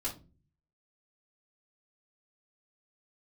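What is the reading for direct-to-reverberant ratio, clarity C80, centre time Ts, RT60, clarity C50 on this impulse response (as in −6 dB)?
−7.0 dB, 18.5 dB, 18 ms, 0.35 s, 11.0 dB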